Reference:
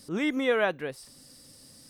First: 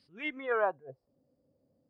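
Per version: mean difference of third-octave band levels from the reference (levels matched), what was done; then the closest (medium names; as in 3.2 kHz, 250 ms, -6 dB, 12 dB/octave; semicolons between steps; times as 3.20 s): 10.5 dB: high-pass 48 Hz; spectral noise reduction 11 dB; low-pass sweep 2.9 kHz -> 580 Hz, 0.21–0.90 s; attacks held to a fixed rise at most 190 dB/s; trim -5.5 dB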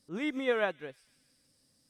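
6.0 dB: treble shelf 9.7 kHz -6 dB; feedback echo behind a high-pass 153 ms, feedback 59%, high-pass 3.4 kHz, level -9 dB; upward expansion 1.5:1, over -48 dBFS; trim -3 dB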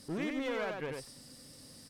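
8.0 dB: treble shelf 5.7 kHz -5.5 dB; compression 6:1, threshold -32 dBFS, peak gain reduction 11.5 dB; one-sided clip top -38.5 dBFS; delay 92 ms -4 dB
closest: second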